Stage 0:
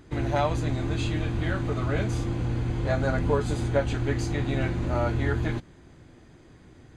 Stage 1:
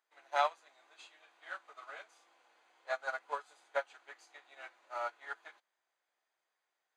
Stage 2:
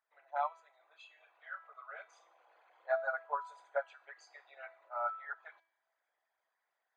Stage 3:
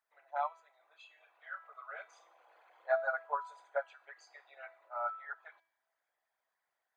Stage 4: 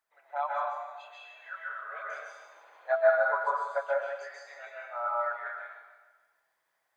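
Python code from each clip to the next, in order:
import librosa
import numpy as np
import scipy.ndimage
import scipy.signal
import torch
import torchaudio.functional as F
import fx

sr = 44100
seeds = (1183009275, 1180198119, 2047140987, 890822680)

y1 = scipy.signal.sosfilt(scipy.signal.butter(4, 680.0, 'highpass', fs=sr, output='sos'), x)
y1 = fx.dynamic_eq(y1, sr, hz=1300.0, q=3.0, threshold_db=-45.0, ratio=4.0, max_db=4)
y1 = fx.upward_expand(y1, sr, threshold_db=-40.0, expansion=2.5)
y1 = y1 * librosa.db_to_amplitude(-1.0)
y2 = fx.envelope_sharpen(y1, sr, power=2.0)
y2 = fx.rider(y2, sr, range_db=4, speed_s=2.0)
y2 = fx.comb_fb(y2, sr, f0_hz=330.0, decay_s=0.6, harmonics='all', damping=0.0, mix_pct=70)
y2 = y2 * librosa.db_to_amplitude(9.0)
y3 = fx.rider(y2, sr, range_db=5, speed_s=2.0)
y4 = fx.echo_feedback(y3, sr, ms=150, feedback_pct=52, wet_db=-14.5)
y4 = fx.rev_plate(y4, sr, seeds[0], rt60_s=1.0, hf_ratio=0.9, predelay_ms=120, drr_db=-4.5)
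y4 = y4 * librosa.db_to_amplitude(2.5)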